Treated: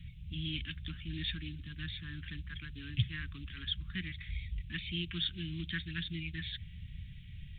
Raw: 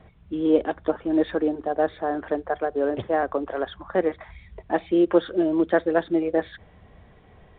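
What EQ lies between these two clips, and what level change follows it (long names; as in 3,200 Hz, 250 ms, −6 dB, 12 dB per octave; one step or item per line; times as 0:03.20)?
elliptic band-stop filter 150–2,600 Hz, stop band 80 dB
dynamic equaliser 220 Hz, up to −5 dB, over −57 dBFS, Q 1.7
+7.5 dB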